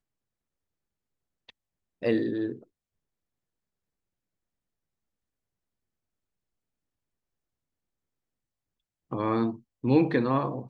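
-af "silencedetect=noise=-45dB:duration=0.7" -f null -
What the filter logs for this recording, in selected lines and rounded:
silence_start: 0.00
silence_end: 1.49 | silence_duration: 1.49
silence_start: 2.63
silence_end: 9.11 | silence_duration: 6.48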